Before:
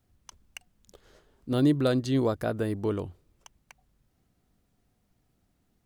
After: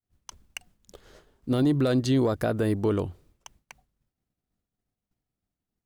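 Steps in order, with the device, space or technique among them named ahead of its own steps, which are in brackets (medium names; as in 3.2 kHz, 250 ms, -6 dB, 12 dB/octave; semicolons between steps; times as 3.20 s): expander -57 dBFS; soft clipper into limiter (saturation -13.5 dBFS, distortion -25 dB; peak limiter -22 dBFS, peak gain reduction 6.5 dB); trim +5.5 dB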